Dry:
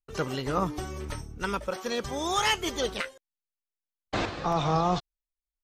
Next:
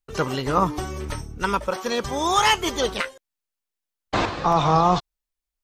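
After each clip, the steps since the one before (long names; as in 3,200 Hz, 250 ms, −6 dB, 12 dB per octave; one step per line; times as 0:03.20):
dynamic equaliser 1,000 Hz, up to +6 dB, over −44 dBFS, Q 2.7
level +5.5 dB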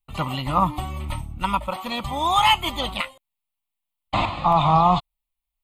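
phaser with its sweep stopped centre 1,600 Hz, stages 6
level +3 dB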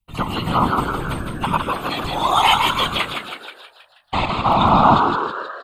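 on a send: echo with shifted repeats 160 ms, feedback 55%, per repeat +95 Hz, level −4 dB
on the sum: random phases in short frames
level +2 dB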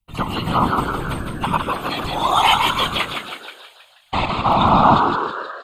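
delay with a high-pass on its return 354 ms, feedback 42%, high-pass 4,700 Hz, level −13.5 dB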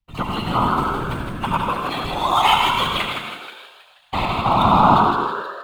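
running median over 5 samples
on a send at −4 dB: convolution reverb RT60 0.40 s, pre-delay 72 ms
on the sum: level −2 dB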